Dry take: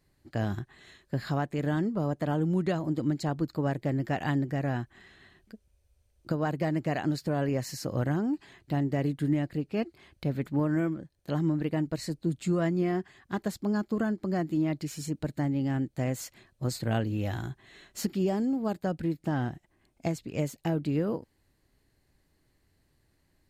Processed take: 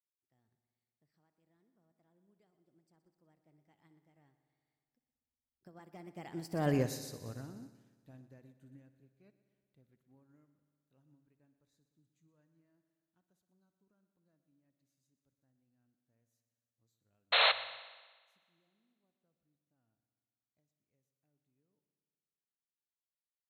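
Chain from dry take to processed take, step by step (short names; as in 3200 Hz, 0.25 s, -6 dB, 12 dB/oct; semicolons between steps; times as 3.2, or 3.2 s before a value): Doppler pass-by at 6.74, 35 m/s, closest 5.4 m; high shelf 6200 Hz +10 dB; painted sound noise, 17.32–17.52, 440–4300 Hz -26 dBFS; on a send: multi-head echo 61 ms, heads first and second, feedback 73%, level -15.5 dB; on the sum: upward expander 1.5:1, over -57 dBFS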